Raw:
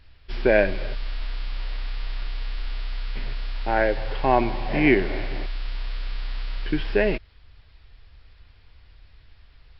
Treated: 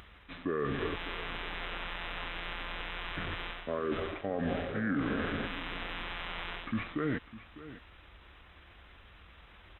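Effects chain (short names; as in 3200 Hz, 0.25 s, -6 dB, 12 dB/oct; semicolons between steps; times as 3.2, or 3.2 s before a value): HPF 110 Hz 12 dB/oct; reverse; compressor 12:1, threshold -30 dBFS, peak gain reduction 17.5 dB; reverse; limiter -26.5 dBFS, peak gain reduction 6.5 dB; upward compressor, threshold -53 dBFS; pitch shift -5.5 st; echo 0.602 s -15.5 dB; gain +3.5 dB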